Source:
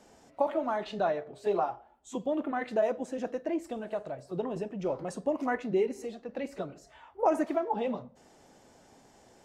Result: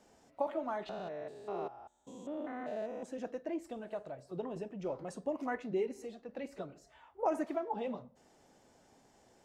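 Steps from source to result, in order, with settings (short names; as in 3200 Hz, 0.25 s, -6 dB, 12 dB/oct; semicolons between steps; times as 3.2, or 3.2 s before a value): 0.89–3.03 stepped spectrum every 0.2 s; gain -6.5 dB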